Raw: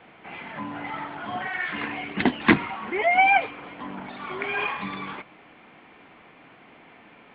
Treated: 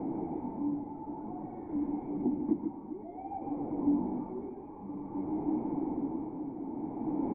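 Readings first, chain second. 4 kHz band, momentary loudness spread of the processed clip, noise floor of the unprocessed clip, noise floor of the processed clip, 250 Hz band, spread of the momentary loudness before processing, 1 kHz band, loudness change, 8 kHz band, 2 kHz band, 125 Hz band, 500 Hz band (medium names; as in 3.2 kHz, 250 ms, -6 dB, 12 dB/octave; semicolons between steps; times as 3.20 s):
under -40 dB, 10 LU, -52 dBFS, -45 dBFS, -1.0 dB, 18 LU, -16.0 dB, -11.0 dB, no reading, under -40 dB, -6.0 dB, -8.0 dB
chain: one-bit delta coder 32 kbps, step -16.5 dBFS; sample-and-hold 8×; on a send: delay 147 ms -6 dB; on the sum: tremolo 0.53 Hz, depth 56%; cascade formant filter u; delay 254 ms -15.5 dB; flange 1.4 Hz, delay 5.5 ms, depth 8.6 ms, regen -36%; gain riding 2 s; treble shelf 2.1 kHz -11.5 dB; trim +2 dB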